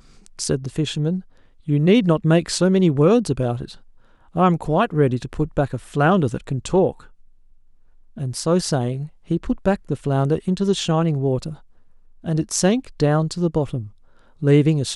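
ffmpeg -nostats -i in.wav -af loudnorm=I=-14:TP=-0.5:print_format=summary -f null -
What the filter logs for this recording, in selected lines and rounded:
Input Integrated:    -20.4 LUFS
Input True Peak:      -3.6 dBTP
Input LRA:             3.3 LU
Input Threshold:     -31.2 LUFS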